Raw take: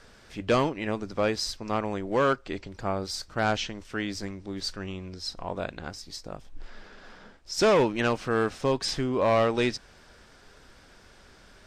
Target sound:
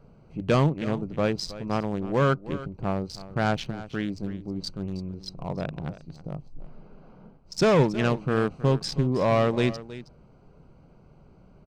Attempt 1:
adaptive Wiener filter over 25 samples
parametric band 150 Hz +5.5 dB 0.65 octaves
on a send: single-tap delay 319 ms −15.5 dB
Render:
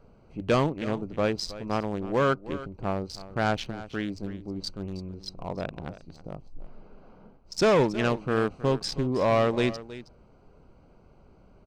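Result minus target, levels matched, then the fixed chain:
125 Hz band −4.0 dB
adaptive Wiener filter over 25 samples
parametric band 150 Hz +14 dB 0.65 octaves
on a send: single-tap delay 319 ms −15.5 dB

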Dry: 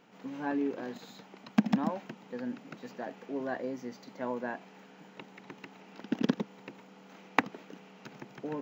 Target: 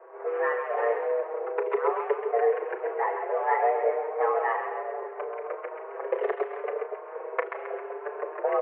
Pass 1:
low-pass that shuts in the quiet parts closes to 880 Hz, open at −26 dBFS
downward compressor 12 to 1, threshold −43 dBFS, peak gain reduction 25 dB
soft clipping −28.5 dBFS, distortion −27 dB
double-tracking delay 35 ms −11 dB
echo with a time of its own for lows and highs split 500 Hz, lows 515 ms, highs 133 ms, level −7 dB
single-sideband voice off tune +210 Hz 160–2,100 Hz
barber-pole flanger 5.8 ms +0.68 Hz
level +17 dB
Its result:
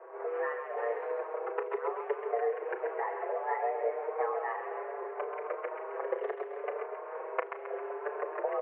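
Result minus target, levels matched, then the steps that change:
downward compressor: peak gain reduction +9.5 dB
change: downward compressor 12 to 1, threshold −32.5 dBFS, peak gain reduction 15.5 dB

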